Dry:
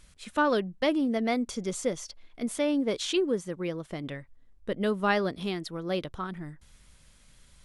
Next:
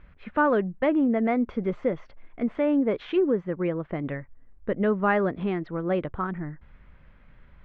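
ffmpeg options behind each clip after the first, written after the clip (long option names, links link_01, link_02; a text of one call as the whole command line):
ffmpeg -i in.wav -filter_complex "[0:a]asplit=2[link_01][link_02];[link_02]alimiter=limit=-24dB:level=0:latency=1:release=109,volume=0dB[link_03];[link_01][link_03]amix=inputs=2:normalize=0,lowpass=frequency=2100:width=0.5412,lowpass=frequency=2100:width=1.3066" out.wav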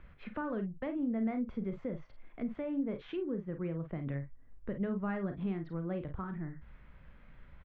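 ffmpeg -i in.wav -filter_complex "[0:a]aecho=1:1:36|50:0.316|0.282,acrossover=split=190[link_01][link_02];[link_02]acompressor=threshold=-46dB:ratio=2[link_03];[link_01][link_03]amix=inputs=2:normalize=0,volume=-3dB" out.wav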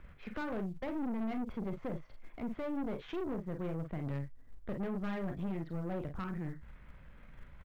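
ffmpeg -i in.wav -filter_complex "[0:a]asplit=2[link_01][link_02];[link_02]acrusher=bits=5:mode=log:mix=0:aa=0.000001,volume=-10dB[link_03];[link_01][link_03]amix=inputs=2:normalize=0,aeval=exprs='(tanh(63.1*val(0)+0.55)-tanh(0.55))/63.1':channel_layout=same,volume=2dB" out.wav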